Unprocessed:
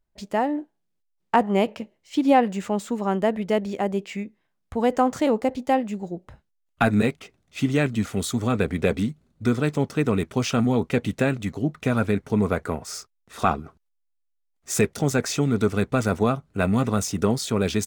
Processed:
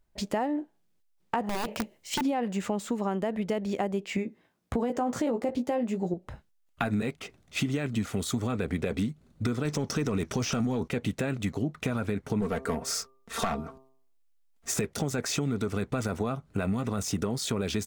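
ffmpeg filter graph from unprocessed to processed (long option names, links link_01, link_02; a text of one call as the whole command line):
ffmpeg -i in.wav -filter_complex "[0:a]asettb=1/sr,asplit=3[link_01][link_02][link_03];[link_01]atrim=end=1.434[link_04];[link_02]atrim=start=1.43:end=2.22,asetpts=PTS-STARTPTS,afade=type=in:duration=0.004:curve=qsin,afade=type=out:start_time=0.786:duration=0.004:curve=qsin,highshelf=frequency=5300:gain=10,acompressor=threshold=-21dB:ratio=5:attack=3.2:release=140:knee=1:detection=peak,aeval=exprs='(mod(11.9*val(0)+1,2)-1)/11.9':channel_layout=same[link_05];[link_03]atrim=start=2.216[link_06];[link_04][link_05]acrossfade=duration=0.004:curve1=hsin:curve2=qsin[link_07];[link_07][link_06]acrossfade=duration=0.004:curve1=qsin:curve2=hsin,asettb=1/sr,asplit=3[link_08][link_09][link_10];[link_08]atrim=end=4.164[link_11];[link_09]atrim=start=4.16:end=6.14,asetpts=PTS-STARTPTS,afade=type=in:duration=0.004:curve=qsin,afade=type=out:start_time=1.976:duration=0.004:curve=qsin,highpass=58,equalizer=frequency=340:width=0.48:gain=5.5,asplit=2[link_12][link_13];[link_13]adelay=17,volume=-6.5dB[link_14];[link_12][link_14]amix=inputs=2:normalize=0,atrim=end_sample=87318[link_15];[link_10]atrim=start=6.136[link_16];[link_11][link_15]acrossfade=duration=0.004:curve1=hsin:curve2=qsin[link_17];[link_17][link_16]acrossfade=duration=0.004:curve1=qsin:curve2=hsin,asettb=1/sr,asplit=3[link_18][link_19][link_20];[link_18]atrim=end=9.654[link_21];[link_19]atrim=start=9.65:end=10.88,asetpts=PTS-STARTPTS,afade=type=in:duration=0.004:curve=qsin,afade=type=out:start_time=1.226:duration=0.004:curve=qsin,equalizer=frequency=5700:width_type=o:width=0.41:gain=11,acontrast=82[link_22];[link_20]atrim=start=10.876[link_23];[link_21][link_22]acrossfade=duration=0.004:curve1=hsin:curve2=qsin[link_24];[link_24][link_23]acrossfade=duration=0.004:curve1=qsin:curve2=hsin,asettb=1/sr,asplit=3[link_25][link_26][link_27];[link_25]atrim=end=12.414[link_28];[link_26]atrim=start=12.41:end=14.74,asetpts=PTS-STARTPTS,afade=type=in:duration=0.004:curve=qsin,afade=type=out:start_time=2.326:duration=0.004:curve=qsin,aeval=exprs='clip(val(0),-1,0.1)':channel_layout=same,aecho=1:1:4.4:0.55,atrim=end_sample=102753,bandreject=frequency=132.3:width_type=h:width=4,bandreject=frequency=264.6:width_type=h:width=4,bandreject=frequency=396.9:width_type=h:width=4,bandreject=frequency=529.2:width_type=h:width=4,bandreject=frequency=661.5:width_type=h:width=4,bandreject=frequency=793.8:width_type=h:width=4,bandreject=frequency=926.1:width_type=h:width=4,bandreject=frequency=1058.4:width_type=h:width=4,bandreject=frequency=1190.7:width_type=h:width=4[link_29];[link_27]atrim=start=14.736[link_30];[link_28][link_29]acrossfade=duration=0.004:curve1=hsin:curve2=qsin[link_31];[link_31][link_30]acrossfade=duration=0.004:curve1=qsin:curve2=hsin,deesser=0.5,alimiter=limit=-14.5dB:level=0:latency=1:release=44,acompressor=threshold=-33dB:ratio=4,volume=5.5dB" out.wav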